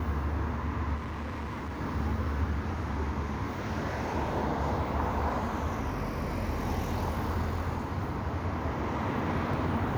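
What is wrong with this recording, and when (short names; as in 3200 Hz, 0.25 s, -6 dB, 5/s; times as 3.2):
0.95–1.81 clipped -33 dBFS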